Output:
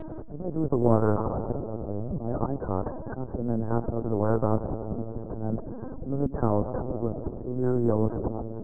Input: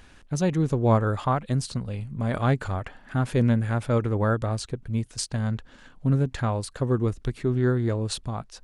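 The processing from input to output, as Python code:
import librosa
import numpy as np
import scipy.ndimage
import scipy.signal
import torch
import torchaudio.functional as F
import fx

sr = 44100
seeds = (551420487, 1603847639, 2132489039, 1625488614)

y = fx.spec_quant(x, sr, step_db=15)
y = fx.peak_eq(y, sr, hz=350.0, db=8.0, octaves=1.8)
y = fx.rider(y, sr, range_db=4, speed_s=2.0)
y = fx.auto_swell(y, sr, attack_ms=708.0)
y = scipy.ndimage.gaussian_filter1d(y, 11.0, mode='constant')
y = fx.rev_freeverb(y, sr, rt60_s=3.1, hf_ratio=0.45, predelay_ms=75, drr_db=17.0)
y = fx.lpc_vocoder(y, sr, seeds[0], excitation='pitch_kept', order=8)
y = fx.spectral_comp(y, sr, ratio=2.0)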